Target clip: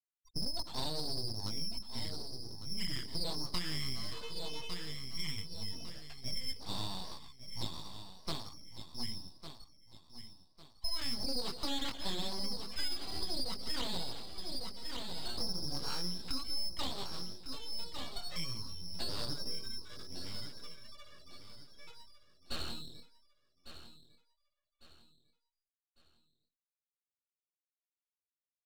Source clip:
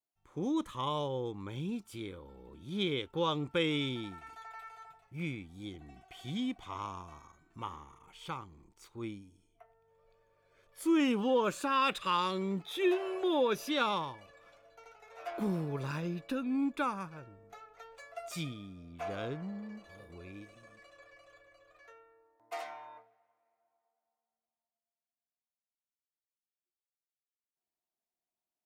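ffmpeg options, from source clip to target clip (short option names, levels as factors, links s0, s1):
-filter_complex "[0:a]asplit=2[s0][s1];[s1]asplit=3[s2][s3][s4];[s2]adelay=157,afreqshift=39,volume=0.141[s5];[s3]adelay=314,afreqshift=78,volume=0.0525[s6];[s4]adelay=471,afreqshift=117,volume=0.0193[s7];[s5][s6][s7]amix=inputs=3:normalize=0[s8];[s0][s8]amix=inputs=2:normalize=0,asetrate=45392,aresample=44100,atempo=0.971532,lowpass=f=2500:t=q:w=0.5098,lowpass=f=2500:t=q:w=0.6013,lowpass=f=2500:t=q:w=0.9,lowpass=f=2500:t=q:w=2.563,afreqshift=-2900,afftfilt=real='re*gte(hypot(re,im),0.00501)':imag='im*gte(hypot(re,im),0.00501)':win_size=1024:overlap=0.75,flanger=delay=16:depth=6.9:speed=0.15,aeval=exprs='abs(val(0))':c=same,asplit=2[s9][s10];[s10]aecho=0:1:1152|2304|3456:0.211|0.074|0.0259[s11];[s9][s11]amix=inputs=2:normalize=0,acompressor=threshold=0.01:ratio=6,volume=2.82"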